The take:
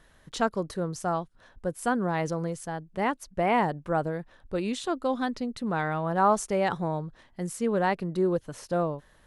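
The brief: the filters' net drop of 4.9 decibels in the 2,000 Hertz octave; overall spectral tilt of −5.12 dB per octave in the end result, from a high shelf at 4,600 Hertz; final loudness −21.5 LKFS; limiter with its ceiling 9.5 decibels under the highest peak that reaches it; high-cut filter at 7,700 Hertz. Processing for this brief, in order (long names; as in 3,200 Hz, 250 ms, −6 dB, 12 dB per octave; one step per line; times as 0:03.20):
low-pass filter 7,700 Hz
parametric band 2,000 Hz −5 dB
high-shelf EQ 4,600 Hz −9 dB
level +11.5 dB
brickwall limiter −10.5 dBFS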